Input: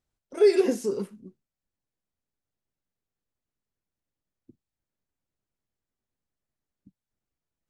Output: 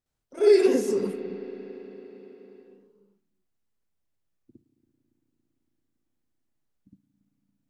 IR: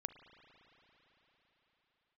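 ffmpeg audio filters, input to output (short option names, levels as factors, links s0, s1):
-filter_complex "[0:a]asplit=2[s0][s1];[1:a]atrim=start_sample=2205,adelay=60[s2];[s1][s2]afir=irnorm=-1:irlink=0,volume=2.82[s3];[s0][s3]amix=inputs=2:normalize=0,volume=0.562"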